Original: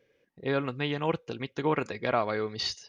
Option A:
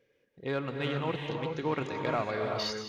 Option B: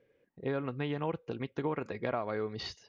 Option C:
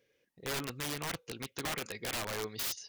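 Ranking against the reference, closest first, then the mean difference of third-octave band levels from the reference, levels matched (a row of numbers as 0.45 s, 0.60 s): B, A, C; 3.0 dB, 6.5 dB, 11.0 dB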